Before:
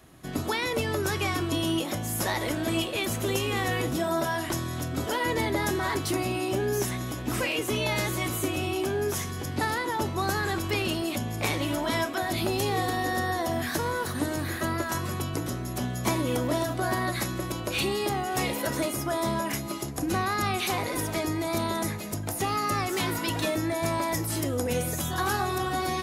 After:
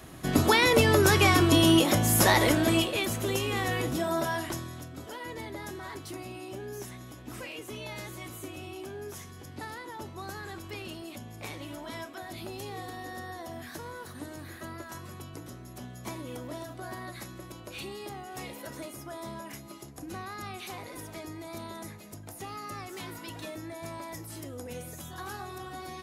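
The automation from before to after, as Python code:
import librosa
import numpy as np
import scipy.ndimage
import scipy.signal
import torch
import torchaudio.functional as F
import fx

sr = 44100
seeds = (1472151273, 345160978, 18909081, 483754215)

y = fx.gain(x, sr, db=fx.line((2.41, 7.0), (3.14, -2.0), (4.36, -2.0), (4.94, -12.5)))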